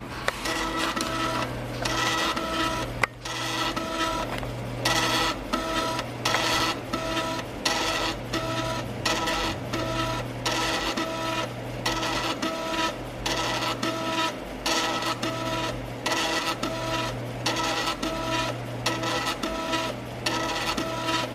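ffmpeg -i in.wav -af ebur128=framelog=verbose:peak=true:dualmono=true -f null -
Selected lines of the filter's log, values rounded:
Integrated loudness:
  I:         -23.9 LUFS
  Threshold: -33.9 LUFS
Loudness range:
  LRA:         1.7 LU
  Threshold: -43.8 LUFS
  LRA low:   -24.4 LUFS
  LRA high:  -22.7 LUFS
True peak:
  Peak:       -3.4 dBFS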